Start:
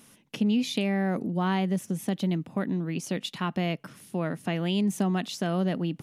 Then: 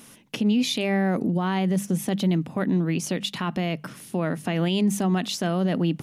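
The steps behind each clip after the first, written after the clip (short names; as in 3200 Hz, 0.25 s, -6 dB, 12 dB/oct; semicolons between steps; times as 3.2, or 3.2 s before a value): notches 50/100/150/200 Hz; limiter -22 dBFS, peak gain reduction 8.5 dB; gain +7 dB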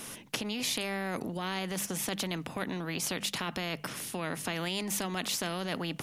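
spectral compressor 2:1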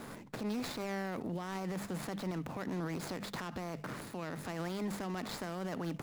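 median filter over 15 samples; limiter -33 dBFS, peak gain reduction 10 dB; gain +2.5 dB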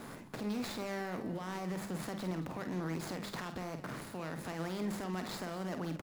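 doubler 49 ms -8 dB; echo 0.224 s -15 dB; gain -1 dB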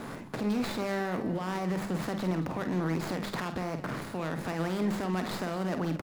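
tracing distortion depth 0.086 ms; high shelf 4200 Hz -5.5 dB; gain +7.5 dB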